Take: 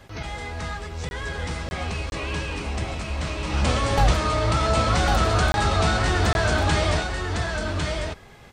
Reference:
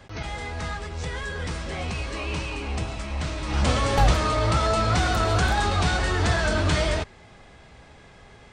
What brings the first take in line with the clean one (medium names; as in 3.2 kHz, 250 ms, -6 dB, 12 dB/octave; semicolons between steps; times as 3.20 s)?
interpolate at 1.09/1.69/2.10/5.52/6.33 s, 21 ms; expander -25 dBFS, range -21 dB; inverse comb 1102 ms -4 dB